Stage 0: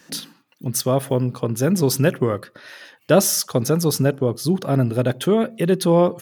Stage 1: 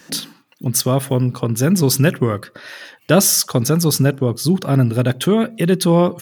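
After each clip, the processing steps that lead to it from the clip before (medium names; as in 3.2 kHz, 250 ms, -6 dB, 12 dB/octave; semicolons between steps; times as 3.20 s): dynamic bell 560 Hz, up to -6 dB, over -31 dBFS, Q 0.78; trim +5.5 dB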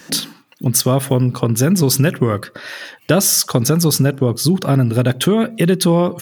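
compression 4:1, threshold -15 dBFS, peak gain reduction 7 dB; trim +4.5 dB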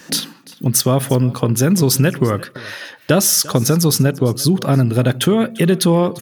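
delay 345 ms -21 dB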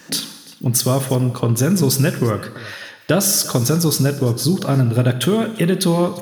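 gated-style reverb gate 370 ms falling, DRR 9.5 dB; trim -2.5 dB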